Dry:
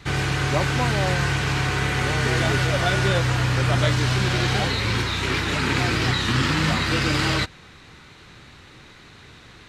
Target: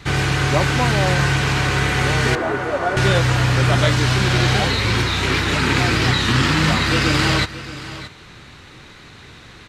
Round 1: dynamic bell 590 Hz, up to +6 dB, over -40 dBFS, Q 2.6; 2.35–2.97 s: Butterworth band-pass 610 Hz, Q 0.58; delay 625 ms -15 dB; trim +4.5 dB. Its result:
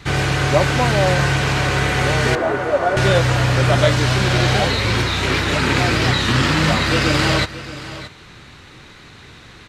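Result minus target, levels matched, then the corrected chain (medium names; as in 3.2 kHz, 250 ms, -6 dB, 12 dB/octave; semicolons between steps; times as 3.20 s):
500 Hz band +3.0 dB
2.35–2.97 s: Butterworth band-pass 610 Hz, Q 0.58; delay 625 ms -15 dB; trim +4.5 dB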